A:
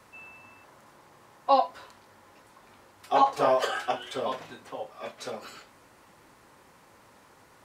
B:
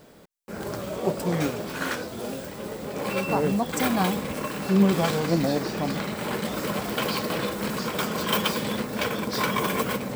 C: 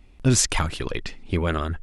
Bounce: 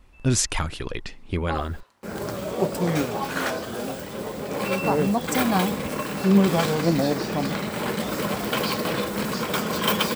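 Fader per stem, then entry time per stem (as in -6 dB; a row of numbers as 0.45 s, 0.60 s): -10.0 dB, +2.0 dB, -2.5 dB; 0.00 s, 1.55 s, 0.00 s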